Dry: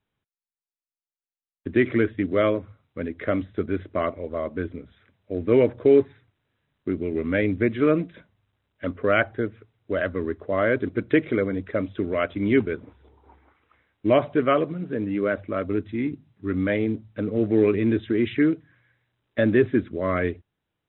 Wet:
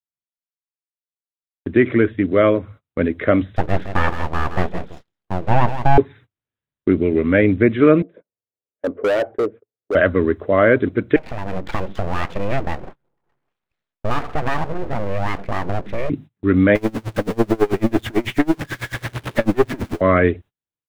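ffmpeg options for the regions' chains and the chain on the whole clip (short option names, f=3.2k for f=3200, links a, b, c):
-filter_complex "[0:a]asettb=1/sr,asplit=3[a][b][c];[a]atrim=end=3.564[d];[b]atrim=start=3.56:end=5.98,asetpts=PTS-STARTPTS,afade=t=in:d=0.004:c=qsin,afade=t=out:st=2.416:d=0.004:c=qsin,aeval=exprs='abs(val(0))':c=same,aecho=1:1:164:0.282,atrim=end_sample=106722[e];[c]atrim=start=5.976[f];[d][e]acrossfade=d=0.004:c1=hsin:c2=qsin[g];[g][f]acrossfade=d=0.004:c1=qsin:c2=hsin,asettb=1/sr,asplit=3[h][i][j];[h]atrim=end=8.024[k];[i]atrim=start=8.02:end=9.95,asetpts=PTS-STARTPTS,afade=t=in:d=0.004:c=qsin,afade=t=out:st=1.926:d=0.004:c=qsin,bandpass=f=470:t=q:w=2.6,asoftclip=type=hard:threshold=-28dB[l];[j]atrim=start=9.946[m];[k][l]acrossfade=d=0.004:c1=hsin:c2=qsin[n];[n][m]acrossfade=d=0.004:c1=qsin:c2=hsin,asettb=1/sr,asplit=3[o][p][q];[o]atrim=end=11.164[r];[p]atrim=start=11.16:end=16.1,asetpts=PTS-STARTPTS,afade=t=in:d=0.004:c=qsin,afade=t=out:st=4.936:d=0.004:c=qsin,lowpass=2.1k,aeval=exprs='abs(val(0))':c=same,acompressor=threshold=-31dB:ratio=3:attack=3.2:release=140:knee=1:detection=peak[s];[q]atrim=start=16.096[t];[r][s]acrossfade=d=0.004:c1=hsin:c2=qsin[u];[u][t]acrossfade=d=0.004:c1=qsin:c2=hsin,asettb=1/sr,asplit=3[v][w][x];[v]atrim=end=16.754[y];[w]atrim=start=16.75:end=20.01,asetpts=PTS-STARTPTS,afade=t=in:d=0.004:c=qsin,afade=t=out:st=3.256:d=0.004:c=qsin,aeval=exprs='val(0)+0.5*0.0631*sgn(val(0))':c=same,aeval=exprs='(tanh(7.94*val(0)+0.65)-tanh(0.65))/7.94':c=same,aeval=exprs='val(0)*pow(10,-30*(0.5-0.5*cos(2*PI*9.1*n/s))/20)':c=same[z];[x]atrim=start=20.006[aa];[y][z]acrossfade=d=0.004:c1=hsin:c2=qsin[ab];[ab][aa]acrossfade=d=0.004:c1=qsin:c2=hsin,acrossover=split=2800[ac][ad];[ad]acompressor=threshold=-47dB:ratio=4:attack=1:release=60[ae];[ac][ae]amix=inputs=2:normalize=0,agate=range=-29dB:threshold=-46dB:ratio=16:detection=peak,dynaudnorm=f=200:g=3:m=14.5dB,volume=-1dB"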